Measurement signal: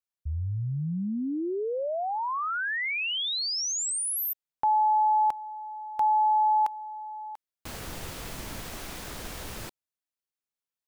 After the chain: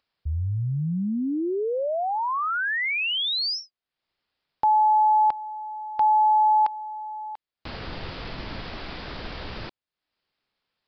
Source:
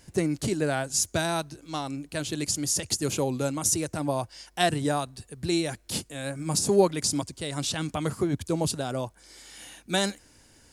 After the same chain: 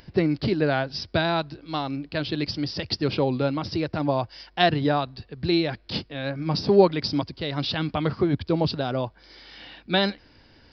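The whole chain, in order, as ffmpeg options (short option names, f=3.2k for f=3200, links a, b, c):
-af "aresample=11025,aresample=44100,acompressor=mode=upward:threshold=-57dB:ratio=1.5:attack=24:release=254:knee=2.83:detection=peak,volume=4dB"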